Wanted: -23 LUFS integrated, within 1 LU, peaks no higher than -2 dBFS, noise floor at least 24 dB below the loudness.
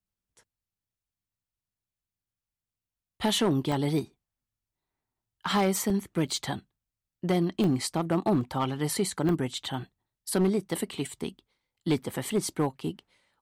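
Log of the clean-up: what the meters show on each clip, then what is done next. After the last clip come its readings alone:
clipped 0.6%; flat tops at -18.5 dBFS; dropouts 6; longest dropout 1.8 ms; loudness -29.0 LUFS; peak -18.5 dBFS; loudness target -23.0 LUFS
-> clip repair -18.5 dBFS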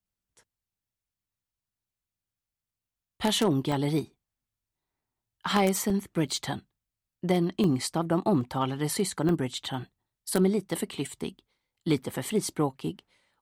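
clipped 0.0%; dropouts 6; longest dropout 1.8 ms
-> interpolate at 3.72/5.9/7.64/8.41/9.29/12.31, 1.8 ms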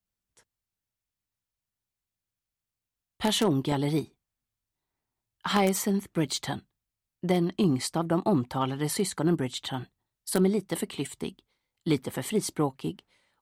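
dropouts 0; loudness -28.5 LUFS; peak -9.5 dBFS; loudness target -23.0 LUFS
-> gain +5.5 dB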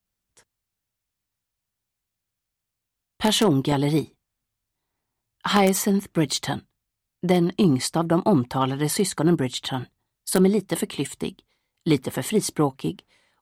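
loudness -23.0 LUFS; peak -4.0 dBFS; noise floor -84 dBFS

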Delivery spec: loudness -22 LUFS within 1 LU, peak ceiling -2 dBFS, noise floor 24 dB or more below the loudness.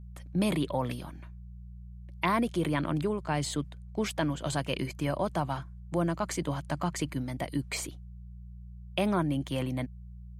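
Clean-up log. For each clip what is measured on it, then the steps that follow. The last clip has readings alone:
hum 60 Hz; harmonics up to 180 Hz; hum level -42 dBFS; loudness -32.0 LUFS; peak -14.5 dBFS; loudness target -22.0 LUFS
-> de-hum 60 Hz, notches 3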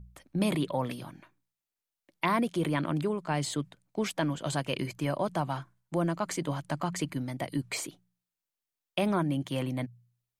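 hum none; loudness -32.0 LUFS; peak -14.5 dBFS; loudness target -22.0 LUFS
-> gain +10 dB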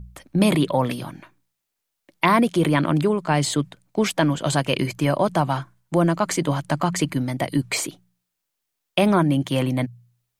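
loudness -22.0 LUFS; peak -4.5 dBFS; noise floor -80 dBFS

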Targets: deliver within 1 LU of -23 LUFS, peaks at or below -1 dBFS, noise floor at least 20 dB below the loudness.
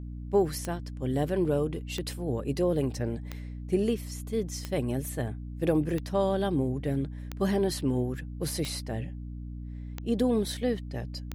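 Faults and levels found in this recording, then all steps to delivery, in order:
clicks 9; hum 60 Hz; harmonics up to 300 Hz; hum level -36 dBFS; loudness -30.0 LUFS; peak -13.0 dBFS; loudness target -23.0 LUFS
-> de-click; de-hum 60 Hz, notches 5; gain +7 dB

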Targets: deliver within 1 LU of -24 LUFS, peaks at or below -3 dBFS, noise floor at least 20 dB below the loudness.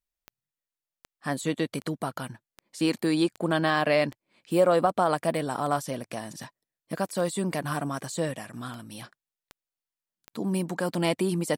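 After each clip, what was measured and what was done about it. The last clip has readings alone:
clicks 15; loudness -27.5 LUFS; peak -11.0 dBFS; loudness target -24.0 LUFS
-> de-click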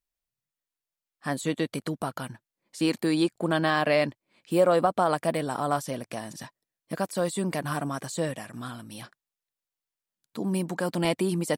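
clicks 0; loudness -27.5 LUFS; peak -11.0 dBFS; loudness target -24.0 LUFS
-> gain +3.5 dB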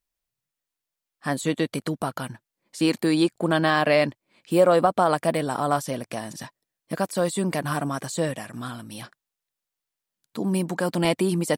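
loudness -24.0 LUFS; peak -7.5 dBFS; noise floor -87 dBFS

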